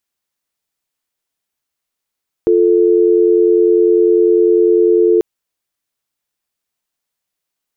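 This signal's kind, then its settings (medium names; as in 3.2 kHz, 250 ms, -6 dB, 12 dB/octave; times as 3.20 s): call progress tone dial tone, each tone -10.5 dBFS 2.74 s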